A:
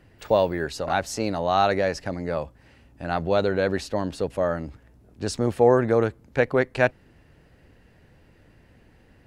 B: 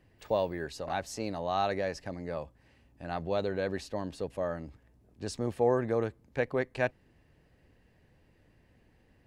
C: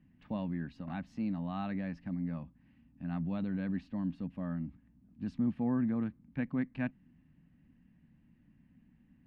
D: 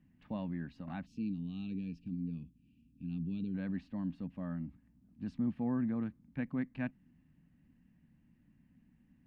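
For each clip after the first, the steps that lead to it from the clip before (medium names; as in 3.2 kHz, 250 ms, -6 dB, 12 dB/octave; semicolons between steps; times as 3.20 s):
band-stop 1.4 kHz, Q 10; trim -9 dB
FFT filter 110 Hz 0 dB, 170 Hz +12 dB, 260 Hz +12 dB, 410 Hz -15 dB, 1.1 kHz -4 dB, 2.8 kHz -4 dB, 7.9 kHz -28 dB; trim -5 dB
time-frequency box 1.06–3.55 s, 480–2300 Hz -24 dB; trim -2.5 dB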